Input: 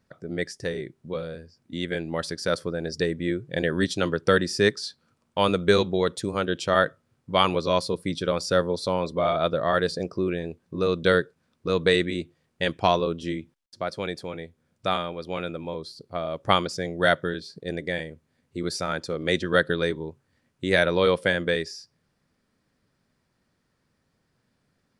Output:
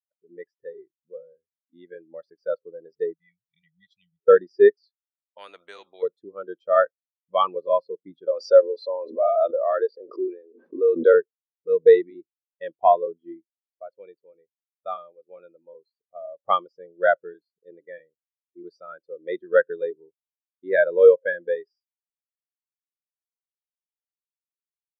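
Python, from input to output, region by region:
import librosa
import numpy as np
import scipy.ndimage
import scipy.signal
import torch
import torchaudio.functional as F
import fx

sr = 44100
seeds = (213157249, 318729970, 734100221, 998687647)

y = fx.chain(x, sr, fx.brickwall_bandstop(low_hz=200.0, high_hz=1900.0),
    fx.low_shelf(hz=370.0, db=-6.5), at=(3.14, 4.19))
y = fx.chain(y, sr, fx.peak_eq(hz=110.0, db=-12.0, octaves=2.0),
    fx.spectral_comp(ratio=4.0), at=(5.38, 6.03))
y = fx.chain(y, sr, fx.highpass(hz=230.0, slope=24),
    fx.pre_swell(db_per_s=36.0), at=(8.28, 11.14))
y = fx.bass_treble(y, sr, bass_db=-10, treble_db=-5)
y = fx.spectral_expand(y, sr, expansion=2.5)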